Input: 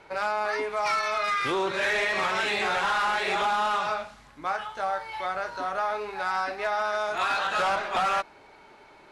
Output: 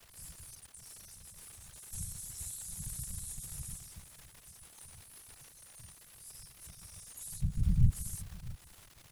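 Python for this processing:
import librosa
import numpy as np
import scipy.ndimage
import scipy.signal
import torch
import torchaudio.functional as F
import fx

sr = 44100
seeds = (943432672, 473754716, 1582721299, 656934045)

y = scipy.signal.sosfilt(scipy.signal.cheby2(4, 80, [120.0, 2100.0], 'bandstop', fs=sr, output='sos'), x)
y = fx.level_steps(y, sr, step_db=17, at=(0.55, 1.93))
y = fx.tilt_eq(y, sr, slope=-4.5, at=(7.41, 7.92))
y = 10.0 ** (-35.0 / 20.0) * np.tanh(y / 10.0 ** (-35.0 / 20.0))
y = fx.dmg_crackle(y, sr, seeds[0], per_s=170.0, level_db=-56.0)
y = fx.whisperise(y, sr, seeds[1])
y = y + 10.0 ** (-19.0 / 20.0) * np.pad(y, (int(652 * sr / 1000.0), 0))[:len(y)]
y = y * librosa.db_to_amplitude(16.0)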